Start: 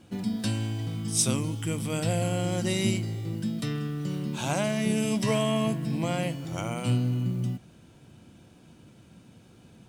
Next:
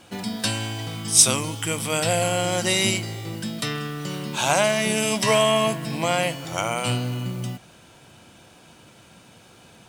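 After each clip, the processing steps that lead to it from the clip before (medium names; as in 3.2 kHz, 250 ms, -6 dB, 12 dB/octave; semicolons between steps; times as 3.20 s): FFT filter 260 Hz 0 dB, 610 Hz +10 dB, 900 Hz +12 dB; trim -1 dB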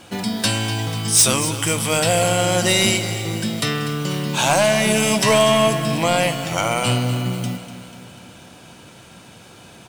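saturation -14.5 dBFS, distortion -12 dB; on a send: feedback delay 245 ms, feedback 58%, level -12.5 dB; on the sum: trim +6 dB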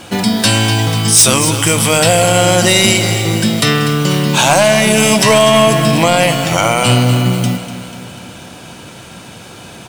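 loudness maximiser +11 dB; trim -1 dB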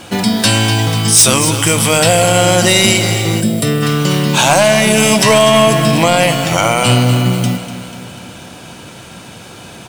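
time-frequency box 3.41–3.82 s, 720–7300 Hz -9 dB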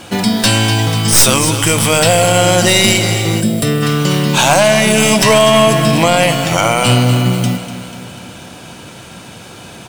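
tracing distortion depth 0.023 ms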